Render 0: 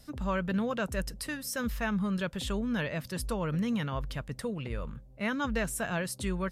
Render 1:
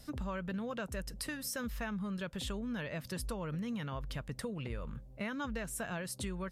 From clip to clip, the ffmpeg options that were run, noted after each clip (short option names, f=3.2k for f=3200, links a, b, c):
-af "acompressor=threshold=-37dB:ratio=6,volume=1dB"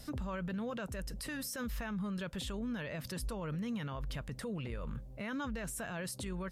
-af "alimiter=level_in=12dB:limit=-24dB:level=0:latency=1:release=27,volume=-12dB,volume=4dB"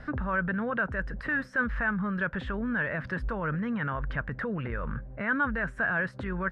-af "lowpass=f=1.6k:t=q:w=4.5,volume=6.5dB"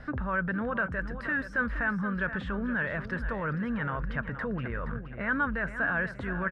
-af "aecho=1:1:472|944|1416|1888:0.282|0.104|0.0386|0.0143,volume=-1dB"